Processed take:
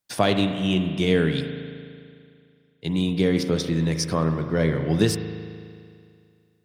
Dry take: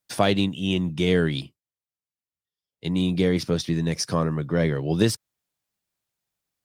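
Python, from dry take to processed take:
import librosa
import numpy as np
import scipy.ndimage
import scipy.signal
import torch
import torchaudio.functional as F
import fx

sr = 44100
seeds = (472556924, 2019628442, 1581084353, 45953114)

y = fx.rev_spring(x, sr, rt60_s=2.3, pass_ms=(37,), chirp_ms=65, drr_db=6.5)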